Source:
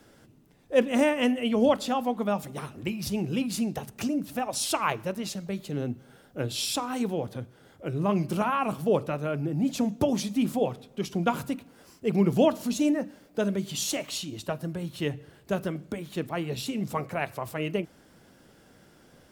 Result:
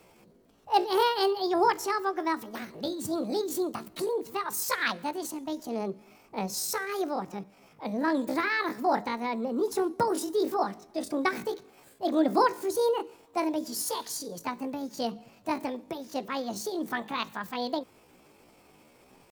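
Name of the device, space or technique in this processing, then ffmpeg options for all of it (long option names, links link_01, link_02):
chipmunk voice: -af "asetrate=70004,aresample=44100,atempo=0.629961,volume=-1.5dB"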